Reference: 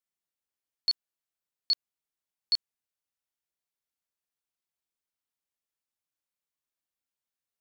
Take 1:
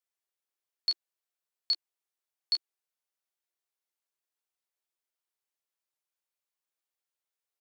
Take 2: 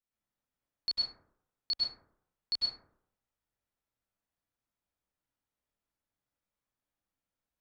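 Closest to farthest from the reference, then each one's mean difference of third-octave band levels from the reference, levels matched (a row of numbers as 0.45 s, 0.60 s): 1, 2; 1.5 dB, 3.5 dB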